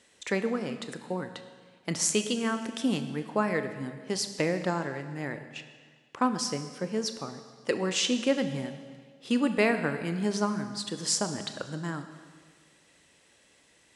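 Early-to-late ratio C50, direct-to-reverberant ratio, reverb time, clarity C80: 10.0 dB, 8.0 dB, 1.7 s, 11.0 dB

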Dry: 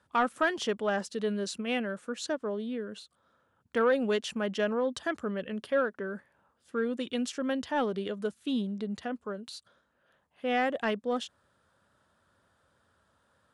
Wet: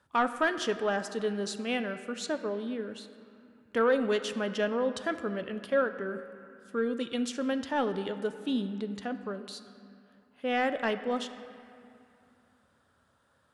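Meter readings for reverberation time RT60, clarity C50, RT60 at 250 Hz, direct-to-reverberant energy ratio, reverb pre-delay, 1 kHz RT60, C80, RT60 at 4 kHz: 2.6 s, 11.0 dB, 3.0 s, 9.5 dB, 6 ms, 2.7 s, 11.5 dB, 1.8 s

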